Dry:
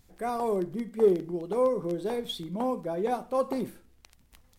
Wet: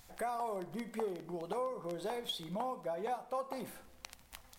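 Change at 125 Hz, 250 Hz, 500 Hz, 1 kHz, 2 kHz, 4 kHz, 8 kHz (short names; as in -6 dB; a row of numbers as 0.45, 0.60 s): -10.0, -12.5, -12.0, -5.5, -3.0, -3.0, -2.0 dB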